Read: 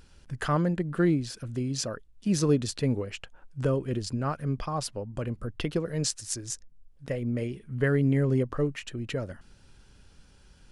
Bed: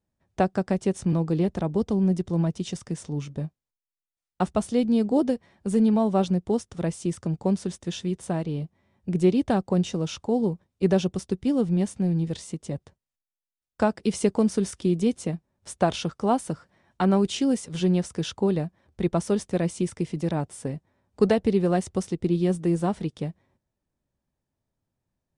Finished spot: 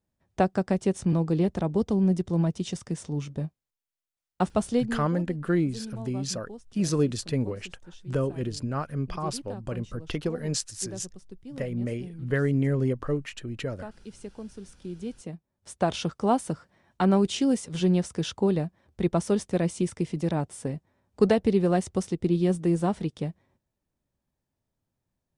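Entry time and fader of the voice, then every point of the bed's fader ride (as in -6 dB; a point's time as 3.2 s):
4.50 s, -0.5 dB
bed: 4.76 s -0.5 dB
5.09 s -18.5 dB
14.56 s -18.5 dB
16.04 s -0.5 dB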